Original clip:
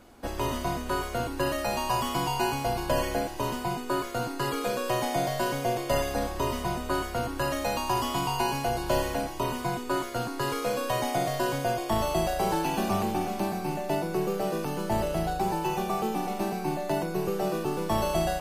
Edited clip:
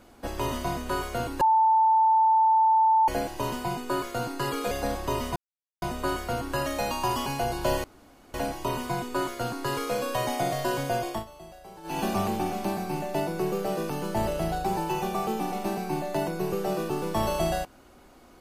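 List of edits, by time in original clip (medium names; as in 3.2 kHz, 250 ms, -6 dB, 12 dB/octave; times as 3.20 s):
1.41–3.08 s: bleep 885 Hz -17 dBFS
4.71–6.03 s: delete
6.68 s: insert silence 0.46 s
8.12–8.51 s: delete
9.09 s: insert room tone 0.50 s
11.84–12.74 s: dip -19.5 dB, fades 0.16 s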